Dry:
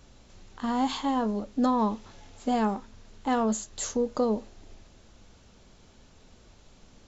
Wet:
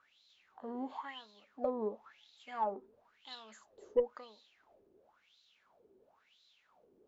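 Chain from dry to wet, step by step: wah-wah 0.97 Hz 370–4000 Hz, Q 8.3; Chebyshev shaper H 4 -23 dB, 6 -29 dB, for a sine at -22.5 dBFS; trim +4 dB

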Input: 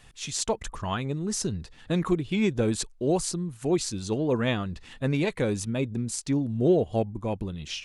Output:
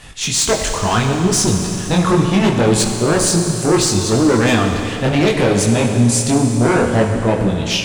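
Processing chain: in parallel at -6 dB: overload inside the chain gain 26.5 dB; on the sum: Chebyshev shaper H 5 -6 dB, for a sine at -11.5 dBFS; chorus voices 2, 0.7 Hz, delay 21 ms, depth 4.9 ms; Schroeder reverb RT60 3.2 s, combs from 30 ms, DRR 4 dB; trim +5 dB

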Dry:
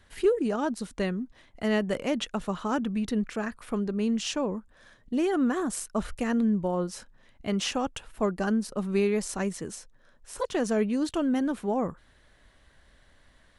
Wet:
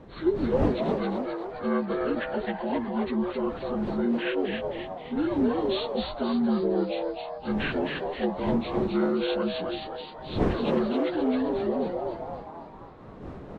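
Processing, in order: frequency axis rescaled in octaves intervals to 75%; wind noise 370 Hz -38 dBFS; on a send: frequency-shifting echo 263 ms, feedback 48%, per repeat +140 Hz, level -4 dB

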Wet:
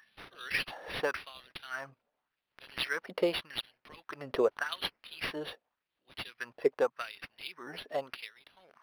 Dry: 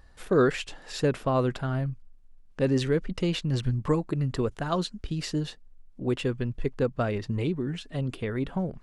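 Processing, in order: LFO high-pass sine 0.86 Hz 510–5500 Hz; decimation joined by straight lines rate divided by 6×; trim +1.5 dB

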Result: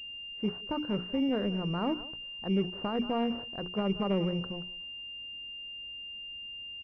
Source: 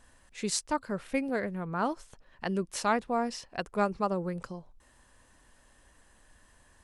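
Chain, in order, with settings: high-pass 220 Hz 6 dB/octave; peaking EQ 720 Hz -5.5 dB 1.6 oct; hum notches 60/120/180/240/300/360/420 Hz; transient shaper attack -3 dB, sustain +4 dB; speakerphone echo 180 ms, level -17 dB; in parallel at -6 dB: small samples zeroed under -44 dBFS; on the sum: peak limiter -23.5 dBFS, peak gain reduction 10.5 dB; de-esser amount 85%; tilt EQ -2.5 dB/octave; level-controlled noise filter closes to 740 Hz, open at -30.5 dBFS; class-D stage that switches slowly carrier 2.8 kHz

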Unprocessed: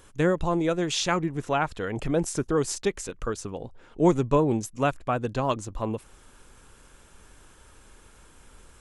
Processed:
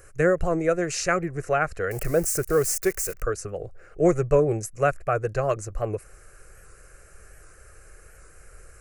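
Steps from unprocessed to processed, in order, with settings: 1.91–3.22 s: zero-crossing glitches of -28.5 dBFS; static phaser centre 930 Hz, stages 6; warped record 78 rpm, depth 100 cents; trim +5 dB

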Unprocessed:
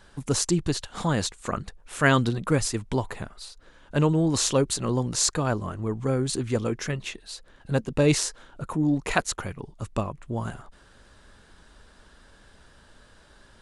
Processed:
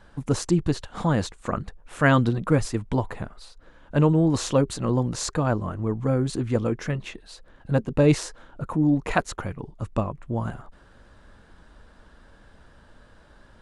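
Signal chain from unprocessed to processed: treble shelf 2.6 kHz -12 dB; band-stop 400 Hz, Q 12; trim +3 dB

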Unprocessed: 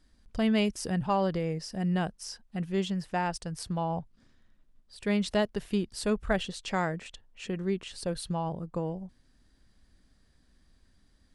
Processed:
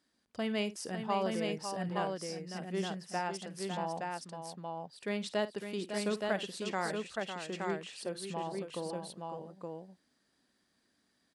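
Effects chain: high-pass 250 Hz 12 dB/octave; multi-tap echo 52/554/870 ms -15/-8/-3.5 dB; trim -5 dB

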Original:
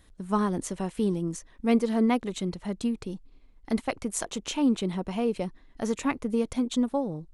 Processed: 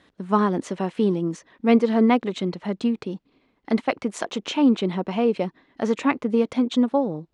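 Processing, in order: band-pass 190–3800 Hz; trim +7 dB

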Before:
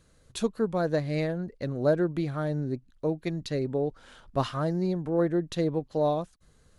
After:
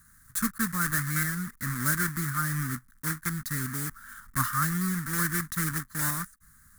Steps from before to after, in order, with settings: block-companded coder 3-bit; FFT filter 240 Hz 0 dB, 460 Hz -26 dB, 690 Hz -26 dB, 1.2 kHz +8 dB, 1.8 kHz +10 dB, 2.7 kHz -14 dB, 10 kHz +12 dB

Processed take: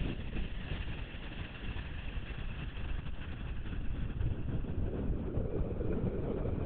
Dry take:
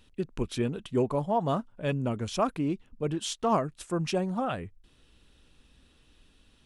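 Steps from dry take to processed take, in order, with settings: compressor with a negative ratio -39 dBFS, ratio -1; power-law waveshaper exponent 0.7; Paulstretch 34×, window 0.25 s, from 2.81 s; LPC vocoder at 8 kHz whisper

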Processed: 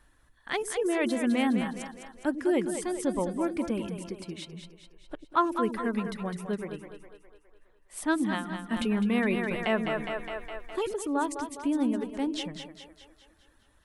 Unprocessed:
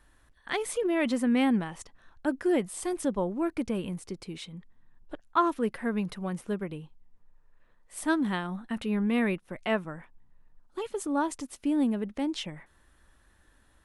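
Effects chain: reverb removal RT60 0.88 s; on a send: two-band feedback delay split 360 Hz, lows 93 ms, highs 206 ms, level -7.5 dB; 8.72–10.94 s: on the sum: level flattener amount 50%

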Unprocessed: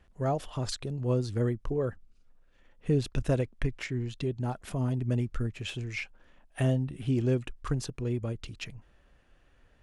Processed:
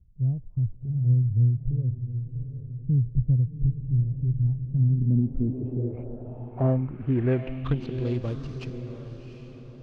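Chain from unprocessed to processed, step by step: median filter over 25 samples; echo that smears into a reverb 746 ms, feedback 44%, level -9 dB; low-pass sweep 120 Hz -> 5.2 kHz, 4.63–8.25 s; trim +3 dB

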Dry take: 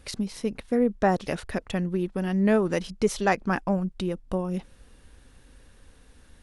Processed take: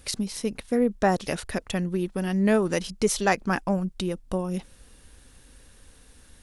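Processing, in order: treble shelf 4.4 kHz +10 dB

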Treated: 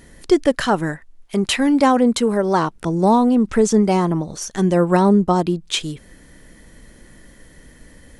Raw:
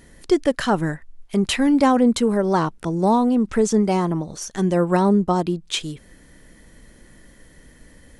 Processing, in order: 0.67–2.76 s: bass shelf 190 Hz -7 dB; trim +3 dB

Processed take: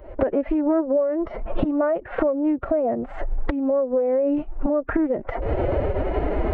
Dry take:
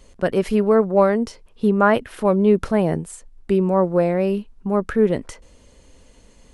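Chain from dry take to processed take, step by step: recorder AGC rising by 71 dB/s; low-pass 2 kHz 24 dB/octave; peaking EQ 610 Hz +12 dB 1.1 oct; compression 12:1, threshold -20 dBFS, peak gain reduction 20 dB; formant-preserving pitch shift +6.5 st; trim +2.5 dB

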